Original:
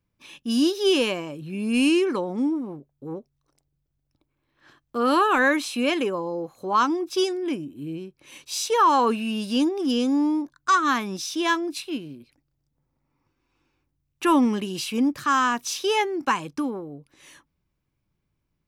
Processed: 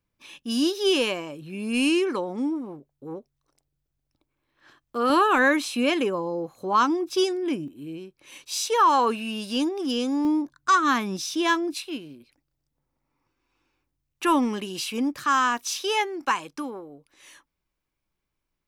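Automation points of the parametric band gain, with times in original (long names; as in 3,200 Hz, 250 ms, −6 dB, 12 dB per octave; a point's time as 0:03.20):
parametric band 120 Hz 2.6 octaves
−5.5 dB
from 0:05.10 +1 dB
from 0:07.68 −7 dB
from 0:10.25 +2 dB
from 0:11.74 −7 dB
from 0:15.57 −13 dB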